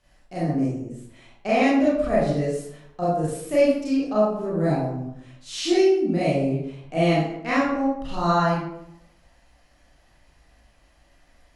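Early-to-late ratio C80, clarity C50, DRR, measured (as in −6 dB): 4.0 dB, −0.5 dB, −9.5 dB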